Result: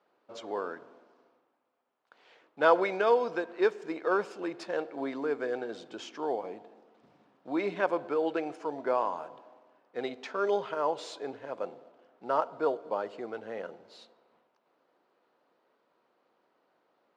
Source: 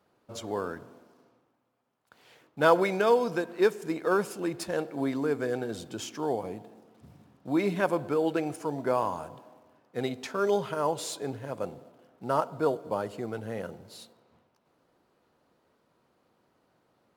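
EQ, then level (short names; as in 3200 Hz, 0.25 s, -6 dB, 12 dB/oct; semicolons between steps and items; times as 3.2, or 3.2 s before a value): HPF 370 Hz 12 dB/oct; air absorption 150 m; 0.0 dB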